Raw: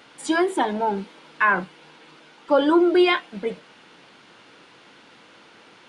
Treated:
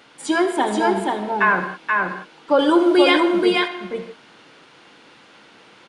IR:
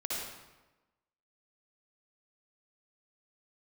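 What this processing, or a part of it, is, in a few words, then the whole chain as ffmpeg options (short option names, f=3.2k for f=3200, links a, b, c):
keyed gated reverb: -filter_complex "[0:a]asplit=3[a][b][c];[1:a]atrim=start_sample=2205[d];[b][d]afir=irnorm=-1:irlink=0[e];[c]apad=whole_len=259504[f];[e][f]sidechaingate=range=-33dB:threshold=-40dB:ratio=16:detection=peak,volume=-10.5dB[g];[a][g]amix=inputs=2:normalize=0,asettb=1/sr,asplit=3[h][i][j];[h]atrim=end=2.594[k];[i]atrim=start=2.59:end=3.2,asetpts=PTS-STARTPTS,afade=t=in:d=0.004:c=qsin,afade=t=out:st=0.606:d=0.004:c=qsin,aemphasis=mode=production:type=50kf[l];[j]atrim=start=3.196[m];[k][l]acrossfade=d=0.004:c1=hsin:c2=qsin[n];[n][m]acrossfade=d=0.004:c1=qsin:c2=hsin,aecho=1:1:480:0.708"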